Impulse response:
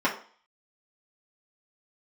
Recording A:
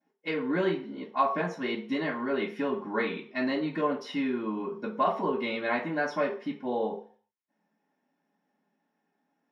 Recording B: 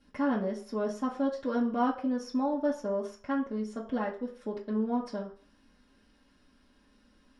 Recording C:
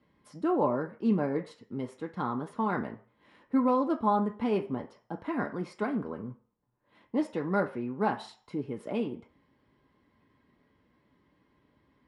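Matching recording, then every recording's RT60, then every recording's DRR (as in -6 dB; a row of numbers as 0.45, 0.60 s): B; 0.45, 0.45, 0.45 s; -15.0, -6.5, 2.5 dB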